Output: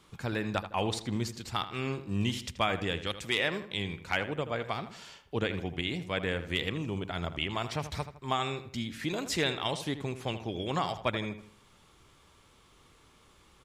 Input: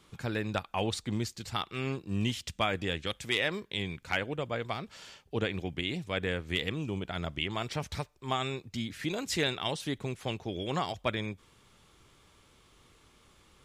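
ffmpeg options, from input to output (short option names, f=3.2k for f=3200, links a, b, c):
-filter_complex "[0:a]equalizer=f=990:t=o:w=0.77:g=2.5,asplit=2[a][b];[b]adelay=80,lowpass=f=3k:p=1,volume=-11dB,asplit=2[c][d];[d]adelay=80,lowpass=f=3k:p=1,volume=0.42,asplit=2[e][f];[f]adelay=80,lowpass=f=3k:p=1,volume=0.42,asplit=2[g][h];[h]adelay=80,lowpass=f=3k:p=1,volume=0.42[i];[c][e][g][i]amix=inputs=4:normalize=0[j];[a][j]amix=inputs=2:normalize=0"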